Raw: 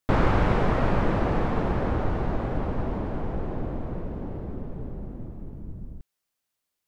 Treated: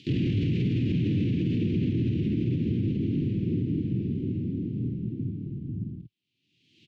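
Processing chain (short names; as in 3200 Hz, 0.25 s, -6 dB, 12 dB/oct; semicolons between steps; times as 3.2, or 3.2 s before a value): tilt -3 dB/oct; upward compressor, threshold -26 dBFS; elliptic band-pass 110–3300 Hz, stop band 40 dB; high shelf 2000 Hz +10.5 dB; harmoniser +5 st -6 dB, +12 st -18 dB; elliptic band-stop 330–2600 Hz, stop band 60 dB; doubler 49 ms -4 dB; limiter -19 dBFS, peak gain reduction 12.5 dB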